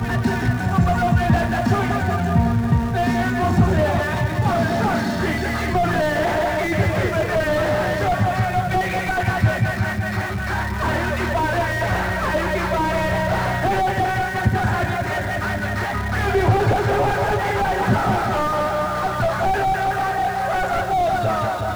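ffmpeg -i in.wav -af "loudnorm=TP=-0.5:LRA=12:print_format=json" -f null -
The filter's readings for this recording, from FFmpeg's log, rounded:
"input_i" : "-20.4",
"input_tp" : "-5.8",
"input_lra" : "1.8",
"input_thresh" : "-30.4",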